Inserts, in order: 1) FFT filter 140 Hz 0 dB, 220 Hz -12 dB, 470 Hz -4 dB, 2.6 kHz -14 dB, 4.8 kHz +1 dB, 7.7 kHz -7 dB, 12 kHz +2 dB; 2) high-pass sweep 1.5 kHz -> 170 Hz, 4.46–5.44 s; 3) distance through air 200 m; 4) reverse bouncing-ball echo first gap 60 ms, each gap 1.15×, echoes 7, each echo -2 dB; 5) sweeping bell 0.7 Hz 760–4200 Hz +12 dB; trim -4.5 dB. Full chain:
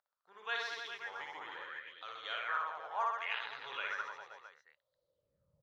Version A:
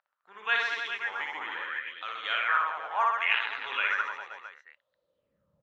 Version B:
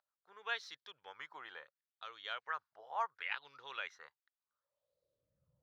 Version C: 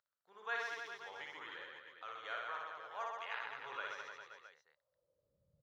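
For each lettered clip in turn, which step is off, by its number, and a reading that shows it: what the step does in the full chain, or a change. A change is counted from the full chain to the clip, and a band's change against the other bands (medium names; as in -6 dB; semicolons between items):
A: 1, loudness change +10.5 LU; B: 4, crest factor change +4.0 dB; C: 5, 500 Hz band +4.0 dB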